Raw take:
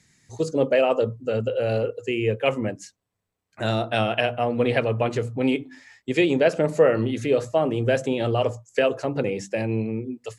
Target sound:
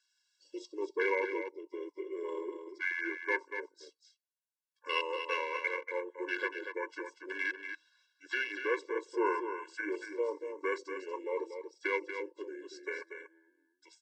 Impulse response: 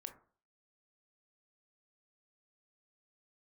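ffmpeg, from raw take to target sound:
-filter_complex "[0:a]highpass=1400,afwtdn=0.0158,highshelf=frequency=7500:gain=10.5,alimiter=limit=-16dB:level=0:latency=1:release=474,asplit=2[link_01][link_02];[link_02]aecho=0:1:176:0.398[link_03];[link_01][link_03]amix=inputs=2:normalize=0,asetrate=32667,aresample=44100,afftfilt=real='re*eq(mod(floor(b*sr/1024/290),2),1)':imag='im*eq(mod(floor(b*sr/1024/290),2),1)':win_size=1024:overlap=0.75,volume=2dB"

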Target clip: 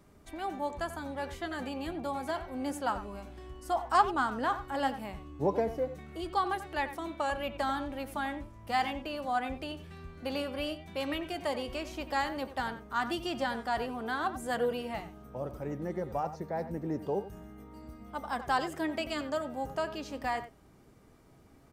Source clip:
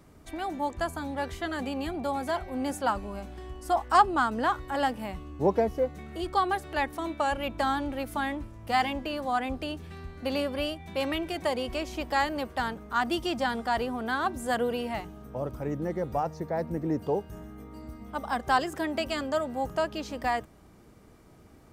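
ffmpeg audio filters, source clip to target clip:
ffmpeg -i in.wav -filter_complex "[0:a]flanger=delay=5:depth=2.5:regen=76:speed=0.12:shape=sinusoidal,asplit=2[link_01][link_02];[link_02]adelay=90,highpass=300,lowpass=3400,asoftclip=type=hard:threshold=-21dB,volume=-12dB[link_03];[link_01][link_03]amix=inputs=2:normalize=0" out.wav

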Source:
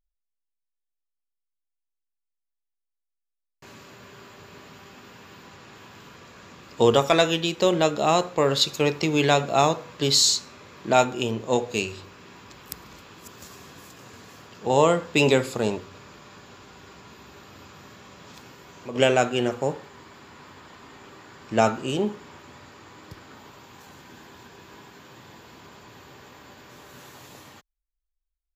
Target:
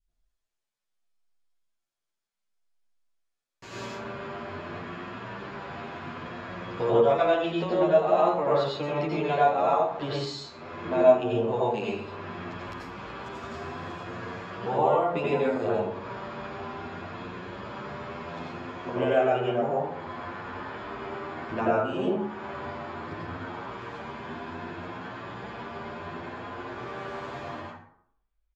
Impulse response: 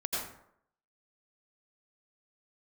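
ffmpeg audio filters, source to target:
-filter_complex "[0:a]acompressor=threshold=-39dB:ratio=3,asetnsamples=nb_out_samples=441:pad=0,asendcmd='3.85 lowpass f 2500',lowpass=8000[link_01];[1:a]atrim=start_sample=2205[link_02];[link_01][link_02]afir=irnorm=-1:irlink=0,adynamicequalizer=threshold=0.00708:dfrequency=790:dqfactor=0.9:tfrequency=790:tqfactor=0.9:attack=5:release=100:ratio=0.375:range=3:mode=boostabove:tftype=bell,asplit=2[link_03][link_04];[link_04]adelay=9.4,afreqshift=0.65[link_05];[link_03][link_05]amix=inputs=2:normalize=1,volume=7dB"

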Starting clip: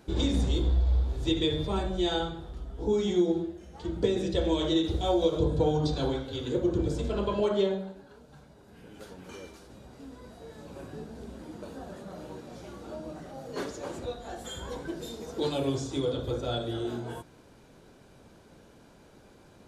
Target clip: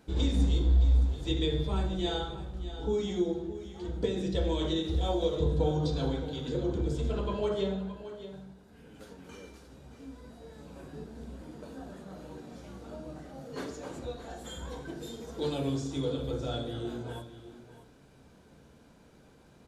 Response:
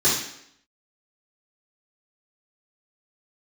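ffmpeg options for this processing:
-filter_complex "[0:a]aecho=1:1:619:0.224,asplit=2[link_01][link_02];[1:a]atrim=start_sample=2205,lowshelf=frequency=180:gain=11.5[link_03];[link_02][link_03]afir=irnorm=-1:irlink=0,volume=-27dB[link_04];[link_01][link_04]amix=inputs=2:normalize=0,volume=-4dB"

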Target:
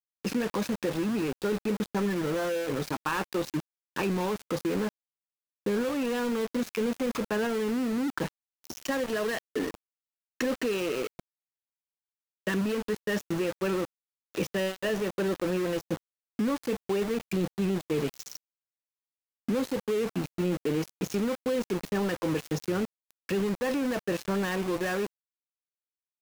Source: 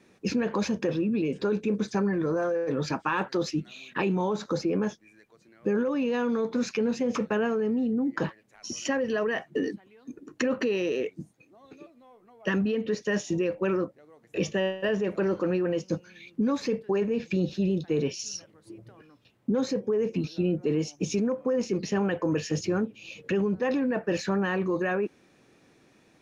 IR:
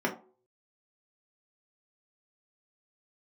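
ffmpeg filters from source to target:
-af "aeval=exprs='val(0)*gte(abs(val(0)),0.0316)':channel_layout=same,volume=-2dB"

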